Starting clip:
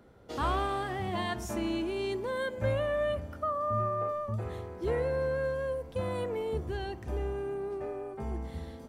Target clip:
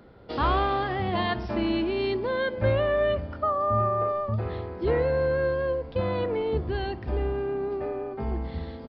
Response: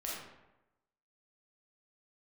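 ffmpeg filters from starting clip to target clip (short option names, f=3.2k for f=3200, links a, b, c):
-filter_complex "[0:a]aresample=11025,aresample=44100,asplit=2[a][b];[b]asetrate=29433,aresample=44100,atempo=1.49831,volume=-16dB[c];[a][c]amix=inputs=2:normalize=0,volume=6dB"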